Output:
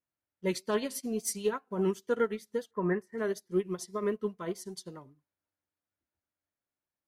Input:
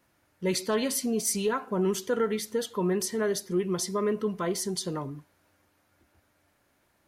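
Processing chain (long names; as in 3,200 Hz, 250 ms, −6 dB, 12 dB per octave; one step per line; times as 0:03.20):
pitch vibrato 5.1 Hz 47 cents
0:02.71–0:03.18: high shelf with overshoot 2,500 Hz −11 dB, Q 3
expander for the loud parts 2.5 to 1, over −41 dBFS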